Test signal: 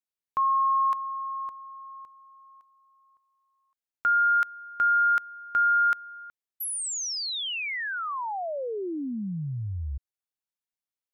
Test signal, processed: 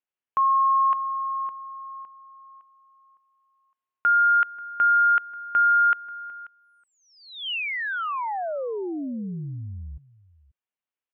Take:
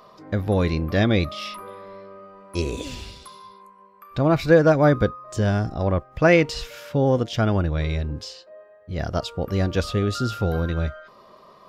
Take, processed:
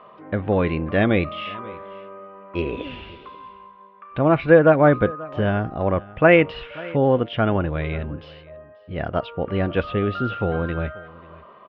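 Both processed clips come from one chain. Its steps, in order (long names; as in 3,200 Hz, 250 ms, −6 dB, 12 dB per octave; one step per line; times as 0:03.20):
Chebyshev low-pass filter 3,000 Hz, order 4
low-shelf EQ 96 Hz −11.5 dB
on a send: single-tap delay 536 ms −21 dB
on the sum: level +3.5 dB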